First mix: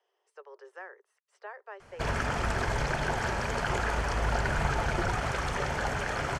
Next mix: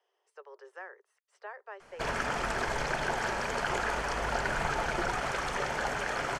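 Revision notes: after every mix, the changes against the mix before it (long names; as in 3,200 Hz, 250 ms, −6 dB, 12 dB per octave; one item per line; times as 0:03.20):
master: add parametric band 79 Hz −14 dB 1.8 octaves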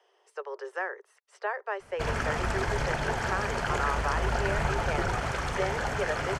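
speech +11.5 dB
master: add parametric band 79 Hz +14 dB 1.8 octaves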